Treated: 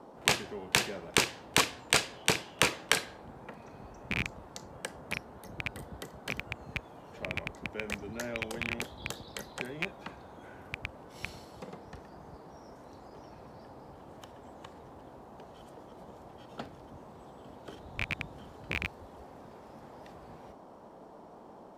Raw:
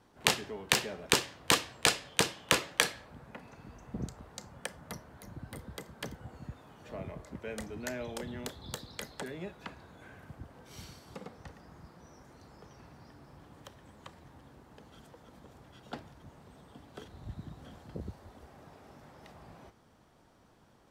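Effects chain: rattle on loud lows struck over -39 dBFS, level -17 dBFS; band noise 180–980 Hz -52 dBFS; tape speed -4%

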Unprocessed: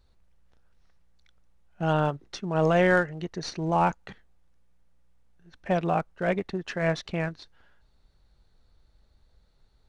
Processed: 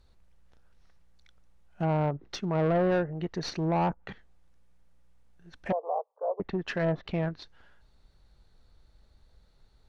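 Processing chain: low-pass that closes with the level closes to 790 Hz, closed at -22.5 dBFS; saturation -23 dBFS, distortion -12 dB; 5.72–6.40 s: Chebyshev band-pass 450–1100 Hz, order 4; trim +2 dB

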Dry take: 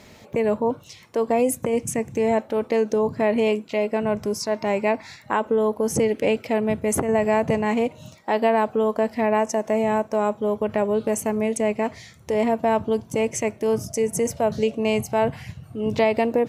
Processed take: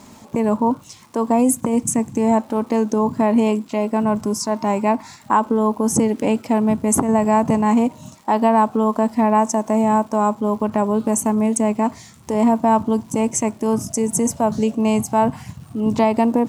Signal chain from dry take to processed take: graphic EQ 250/500/1000/2000/4000/8000 Hz +10/-6/+11/-6/-3/+10 dB; crackle 560 per s -42 dBFS

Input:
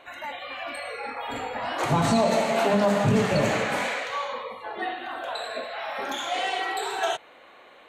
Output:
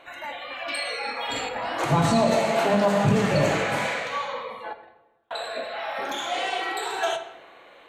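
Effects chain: 0.68–1.49 s: peaking EQ 5.3 kHz +14.5 dB 1.7 oct; 4.73–5.31 s: gate -24 dBFS, range -44 dB; reverberation RT60 1.0 s, pre-delay 6 ms, DRR 7 dB

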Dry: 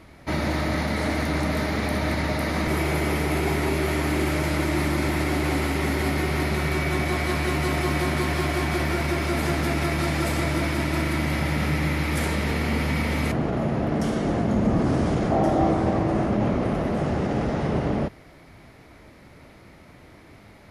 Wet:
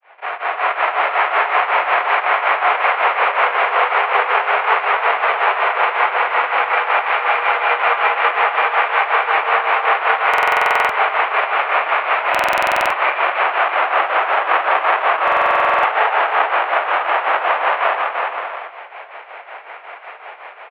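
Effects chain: square wave that keeps the level; granulator 219 ms, grains 5.4 per s; level rider gain up to 12.5 dB; mistuned SSB +110 Hz 550–2600 Hz; in parallel at +3 dB: compression, threshold -29 dBFS, peak gain reduction 17.5 dB; on the sum: dynamic bell 1.2 kHz, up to +4 dB, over -31 dBFS, Q 2.7; on a send: bouncing-ball echo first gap 330 ms, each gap 0.6×, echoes 5; on the sum: buffer glitch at 10.29/12.30/15.23 s, samples 2048, times 12; trim -2.5 dB

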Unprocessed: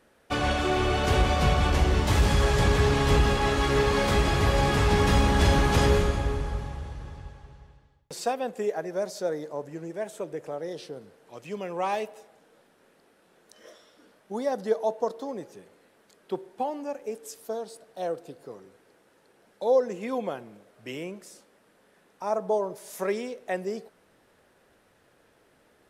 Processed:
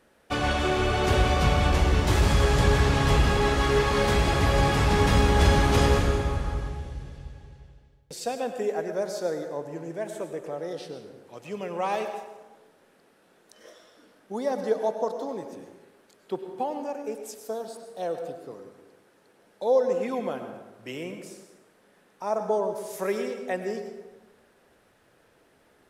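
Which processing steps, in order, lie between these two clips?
6.69–8.40 s: peaking EQ 1.1 kHz -9 dB 1.1 oct; plate-style reverb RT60 1.1 s, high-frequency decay 0.65×, pre-delay 85 ms, DRR 6.5 dB

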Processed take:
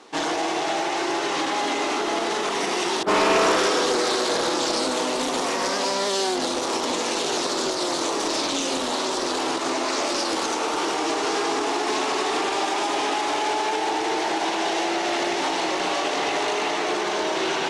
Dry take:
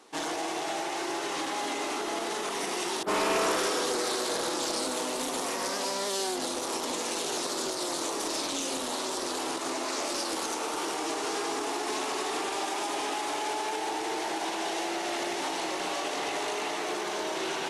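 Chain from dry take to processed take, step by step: low-pass 6.4 kHz 12 dB/octave; trim +8 dB

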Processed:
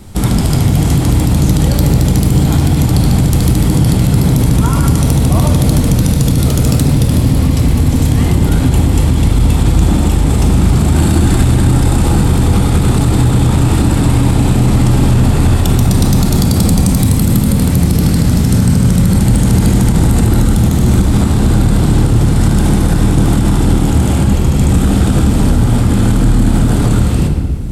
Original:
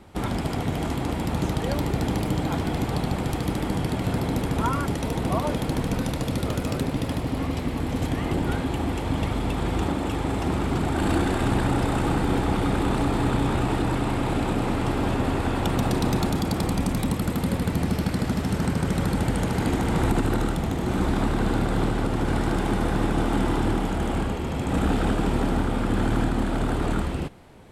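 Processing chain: tone controls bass +11 dB, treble +15 dB; saturation -6 dBFS, distortion -22 dB; on a send at -2.5 dB: reverberation RT60 1.6 s, pre-delay 15 ms; on the sum: loudness maximiser +7 dB; trim -1 dB

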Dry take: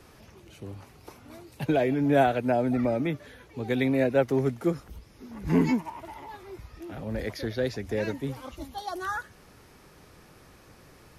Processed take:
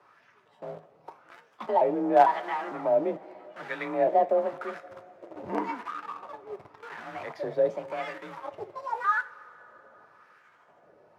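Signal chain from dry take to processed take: pitch shift switched off and on +4 st, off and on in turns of 452 ms; frequency shift +34 Hz; in parallel at -8 dB: companded quantiser 2-bit; on the sum: LFO band-pass sine 0.89 Hz 560–1600 Hz; two-slope reverb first 0.21 s, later 4.2 s, from -21 dB, DRR 8.5 dB; trim +2.5 dB

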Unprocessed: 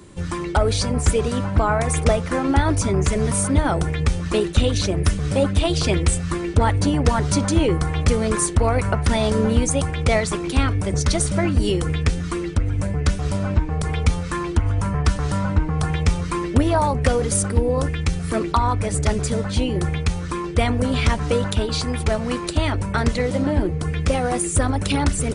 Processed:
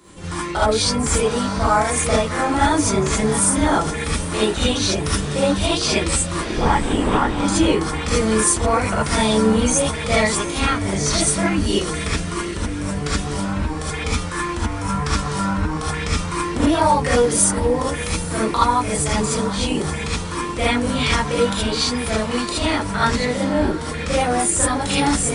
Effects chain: 6.37–7.38 s: LPC vocoder at 8 kHz whisper; bass shelf 330 Hz -9.5 dB; echo that smears into a reverb 734 ms, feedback 42%, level -14 dB; gated-style reverb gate 100 ms rising, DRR -8 dB; trim -3.5 dB

